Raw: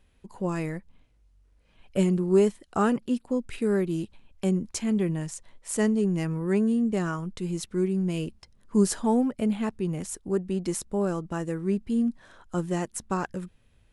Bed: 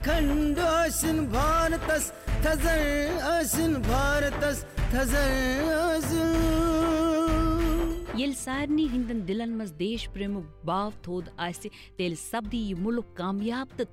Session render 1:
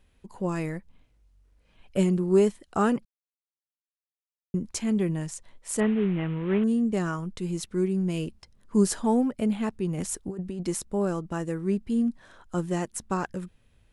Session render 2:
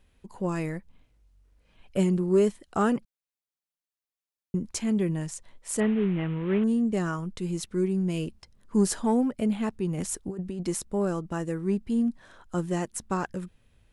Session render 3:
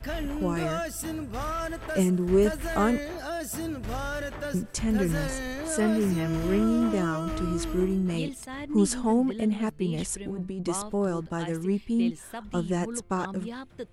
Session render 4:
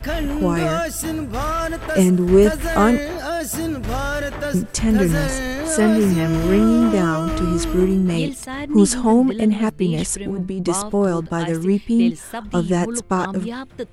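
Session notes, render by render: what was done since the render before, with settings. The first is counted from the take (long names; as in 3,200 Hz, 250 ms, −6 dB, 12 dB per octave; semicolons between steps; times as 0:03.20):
0:03.05–0:04.54: silence; 0:05.80–0:06.64: variable-slope delta modulation 16 kbit/s; 0:09.98–0:10.63: compressor whose output falls as the input rises −32 dBFS
soft clipping −12 dBFS, distortion −24 dB
mix in bed −7.5 dB
level +9 dB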